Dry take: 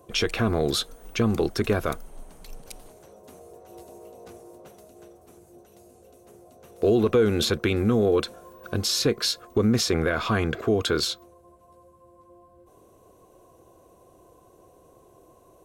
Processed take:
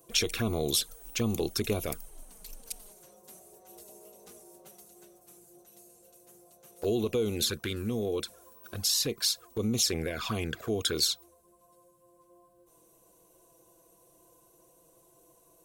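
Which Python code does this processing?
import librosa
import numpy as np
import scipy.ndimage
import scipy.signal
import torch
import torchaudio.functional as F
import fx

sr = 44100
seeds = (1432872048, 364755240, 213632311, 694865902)

y = fx.rider(x, sr, range_db=10, speed_s=2.0)
y = fx.env_flanger(y, sr, rest_ms=6.5, full_db=-18.5)
y = F.preemphasis(torch.from_numpy(y), 0.8).numpy()
y = y * librosa.db_to_amplitude(6.0)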